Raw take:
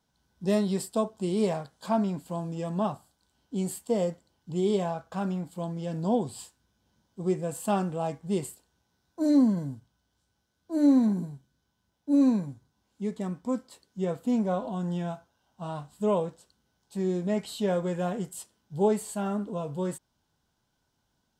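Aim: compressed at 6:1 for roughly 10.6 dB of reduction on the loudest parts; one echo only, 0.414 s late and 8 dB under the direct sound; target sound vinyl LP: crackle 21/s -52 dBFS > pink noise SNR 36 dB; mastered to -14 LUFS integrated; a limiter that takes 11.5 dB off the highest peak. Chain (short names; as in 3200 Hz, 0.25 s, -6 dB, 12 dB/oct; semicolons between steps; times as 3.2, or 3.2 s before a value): compressor 6:1, threshold -29 dBFS; limiter -31 dBFS; echo 0.414 s -8 dB; crackle 21/s -52 dBFS; pink noise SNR 36 dB; gain +26 dB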